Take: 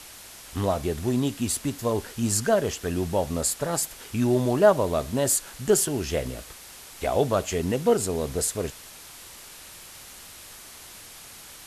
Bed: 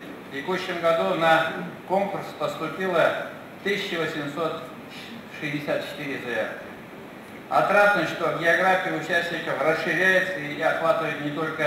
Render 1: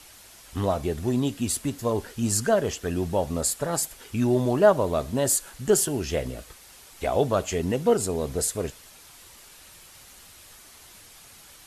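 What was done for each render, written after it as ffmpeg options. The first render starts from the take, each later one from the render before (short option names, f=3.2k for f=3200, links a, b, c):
-af "afftdn=nr=6:nf=-45"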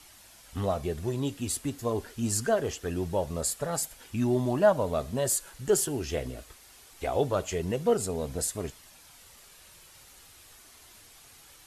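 -af "flanger=delay=0.9:depth=2.1:regen=-66:speed=0.23:shape=triangular"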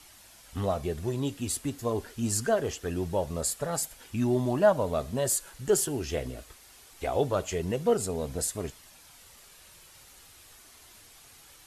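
-af anull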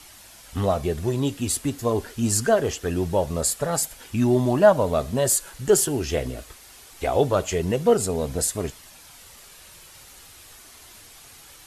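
-af "volume=6.5dB"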